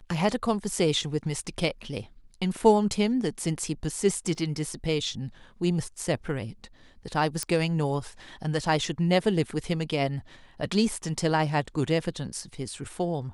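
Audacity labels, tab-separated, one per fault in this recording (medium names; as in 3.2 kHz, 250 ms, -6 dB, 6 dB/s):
4.350000	4.350000	dropout 2.1 ms
7.430000	7.430000	pop -13 dBFS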